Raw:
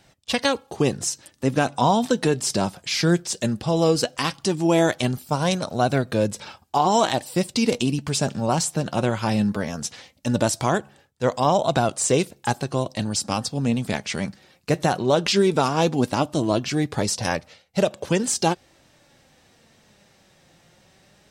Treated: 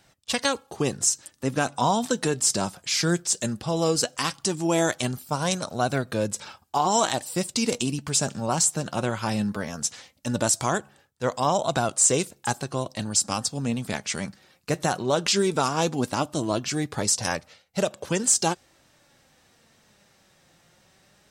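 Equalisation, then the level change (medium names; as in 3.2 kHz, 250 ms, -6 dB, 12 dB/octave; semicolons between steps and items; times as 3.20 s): peaking EQ 1.3 kHz +4 dB 0.94 oct; treble shelf 5.6 kHz +6 dB; dynamic bell 7.4 kHz, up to +7 dB, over -40 dBFS, Q 1.6; -5.0 dB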